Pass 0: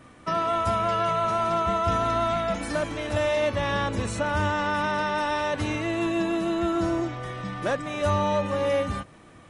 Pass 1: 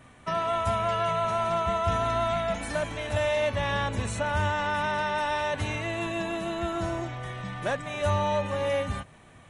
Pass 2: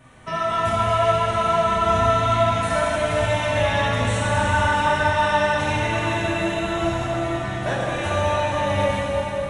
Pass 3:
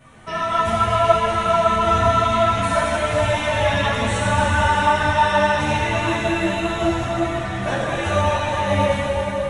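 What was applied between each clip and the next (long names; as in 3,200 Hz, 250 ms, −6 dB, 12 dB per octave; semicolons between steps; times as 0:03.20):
thirty-one-band graphic EQ 200 Hz −4 dB, 315 Hz −11 dB, 500 Hz −5 dB, 1,250 Hz −5 dB, 5,000 Hz −7 dB
dense smooth reverb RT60 4.4 s, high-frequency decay 0.85×, DRR −7 dB
string-ensemble chorus; level +5 dB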